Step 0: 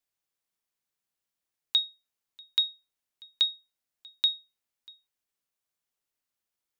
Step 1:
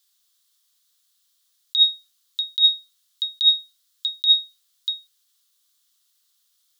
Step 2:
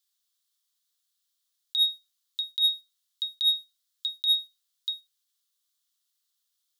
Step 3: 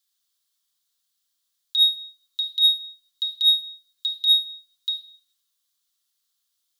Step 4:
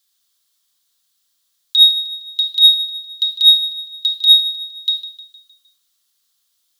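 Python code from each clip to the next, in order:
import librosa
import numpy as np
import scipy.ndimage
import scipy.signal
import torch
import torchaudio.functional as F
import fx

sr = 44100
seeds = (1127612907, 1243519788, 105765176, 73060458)

y1 = scipy.signal.sosfilt(scipy.signal.cheby1(5, 1.0, 1100.0, 'highpass', fs=sr, output='sos'), x)
y1 = fx.high_shelf_res(y1, sr, hz=2900.0, db=6.5, q=3.0)
y1 = fx.over_compress(y1, sr, threshold_db=-23.0, ratio=-1.0)
y1 = y1 * 10.0 ** (6.5 / 20.0)
y2 = fx.leveller(y1, sr, passes=1)
y2 = y2 * 10.0 ** (-9.0 / 20.0)
y3 = fx.room_shoebox(y2, sr, seeds[0], volume_m3=2600.0, walls='furnished', distance_m=2.2)
y3 = y3 * 10.0 ** (1.5 / 20.0)
y4 = fx.echo_feedback(y3, sr, ms=154, feedback_pct=49, wet_db=-15.0)
y4 = y4 * 10.0 ** (8.5 / 20.0)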